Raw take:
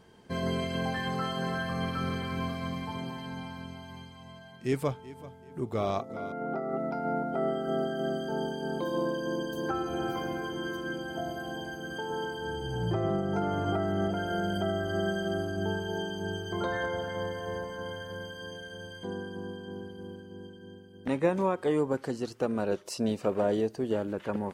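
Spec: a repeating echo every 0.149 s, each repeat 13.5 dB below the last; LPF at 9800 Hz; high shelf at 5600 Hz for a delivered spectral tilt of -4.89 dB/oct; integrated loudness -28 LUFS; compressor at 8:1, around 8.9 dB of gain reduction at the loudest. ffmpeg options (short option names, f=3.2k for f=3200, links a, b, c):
-af "lowpass=9.8k,highshelf=f=5.6k:g=-3,acompressor=threshold=-31dB:ratio=8,aecho=1:1:149|298:0.211|0.0444,volume=8dB"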